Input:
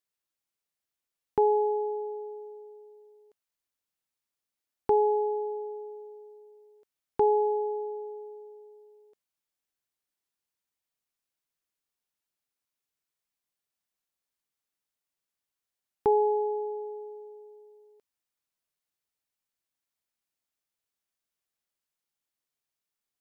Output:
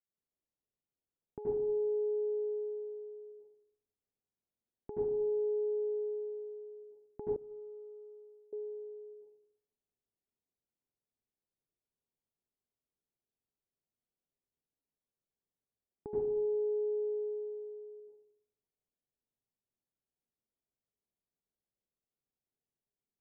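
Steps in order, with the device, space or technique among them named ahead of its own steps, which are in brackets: television next door (compression 4:1, threshold -38 dBFS, peak gain reduction 15.5 dB; low-pass 500 Hz 12 dB/octave; reverberation RT60 0.80 s, pre-delay 73 ms, DRR -7.5 dB); 7.36–8.53 s: expander -17 dBFS; trim -5.5 dB

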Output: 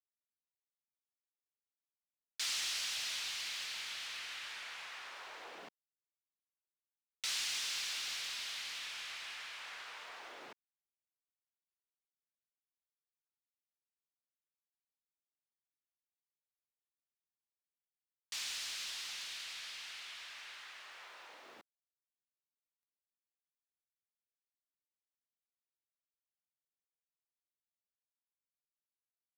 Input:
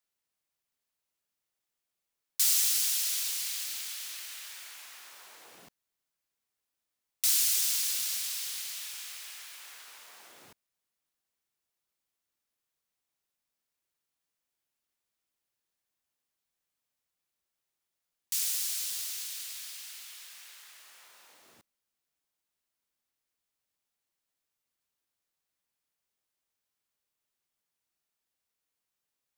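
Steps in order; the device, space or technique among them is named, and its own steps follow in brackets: phone line with mismatched companding (band-pass 330–3300 Hz; companding laws mixed up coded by mu); trim -1 dB

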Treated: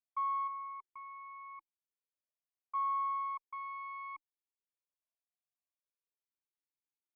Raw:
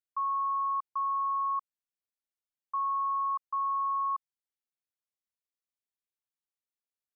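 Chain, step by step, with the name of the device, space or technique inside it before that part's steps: 0.47–2.75 s: dynamic bell 1.1 kHz, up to -5 dB, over -42 dBFS, Q 2.4; talk box (valve stage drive 27 dB, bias 0.55; talking filter a-u 0.37 Hz); trim +5.5 dB

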